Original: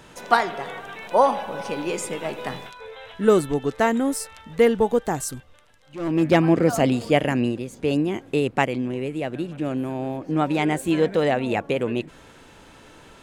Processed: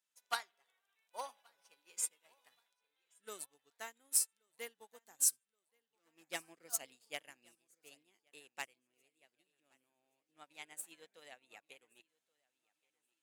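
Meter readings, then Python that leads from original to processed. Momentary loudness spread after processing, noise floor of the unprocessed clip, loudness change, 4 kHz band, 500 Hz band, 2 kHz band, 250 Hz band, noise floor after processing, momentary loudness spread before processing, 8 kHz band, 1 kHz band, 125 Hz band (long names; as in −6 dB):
25 LU, −49 dBFS, −16.5 dB, −14.5 dB, −34.5 dB, −21.0 dB, below −40 dB, below −85 dBFS, 14 LU, −2.0 dB, −26.0 dB, below −40 dB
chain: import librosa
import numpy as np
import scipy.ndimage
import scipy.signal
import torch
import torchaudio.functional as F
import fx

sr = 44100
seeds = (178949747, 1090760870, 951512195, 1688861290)

p1 = np.clip(x, -10.0 ** (-7.0 / 20.0), 10.0 ** (-7.0 / 20.0))
p2 = np.diff(p1, prepend=0.0)
p3 = p2 + fx.echo_feedback(p2, sr, ms=1126, feedback_pct=52, wet_db=-13.5, dry=0)
p4 = fx.upward_expand(p3, sr, threshold_db=-49.0, expansion=2.5)
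y = p4 * 10.0 ** (1.0 / 20.0)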